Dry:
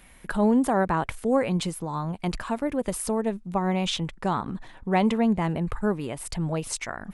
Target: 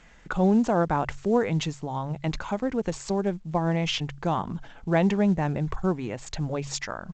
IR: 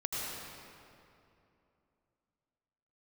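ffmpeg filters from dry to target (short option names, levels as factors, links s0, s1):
-af "asetrate=39289,aresample=44100,atempo=1.12246,bandreject=f=46.33:t=h:w=4,bandreject=f=92.66:t=h:w=4,bandreject=f=138.99:t=h:w=4" -ar 16000 -c:a pcm_alaw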